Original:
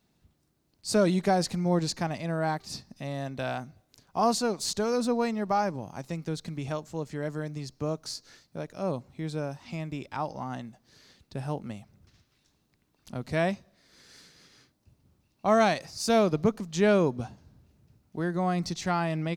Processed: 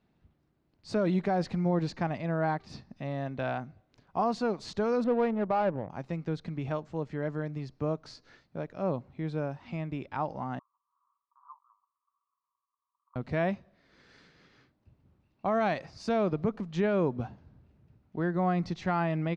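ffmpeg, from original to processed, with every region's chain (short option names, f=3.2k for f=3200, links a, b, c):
-filter_complex "[0:a]asettb=1/sr,asplit=3[a][b][c];[a]atrim=end=5.044[d];[b]atrim=start=5.04:end=5.9,asetpts=PTS-STARTPTS,afade=t=in:d=0.004:c=qsin,afade=t=out:st=0.856:d=0.004:c=qsin,equalizer=f=540:t=o:w=0.51:g=6.5,adynamicsmooth=sensitivity=4.5:basefreq=610,lowpass=7.2k[e];[c]atrim=start=5.896[f];[d][e]acrossfade=d=0.004:c1=hsin:c2=qsin[g];[g][f]acrossfade=d=0.004:c1=qsin:c2=hsin,asettb=1/sr,asplit=3[h][i][j];[h]atrim=end=10.594[k];[i]atrim=start=10.59:end=13.16,asetpts=PTS-STARTPTS,afade=t=in:d=0.004:c=qsin,afade=t=out:st=2.566:d=0.004:c=qsin,asuperpass=centerf=1100:order=8:qfactor=4.1,aecho=1:1:5.3:0.38,atrim=end_sample=113337[l];[j]atrim=start=13.156[m];[k][l]acrossfade=d=0.004:c1=hsin:c2=qsin[n];[n][m]acrossfade=d=0.004:c1=qsin:c2=hsin,alimiter=limit=-19dB:level=0:latency=1:release=99,lowpass=2.5k"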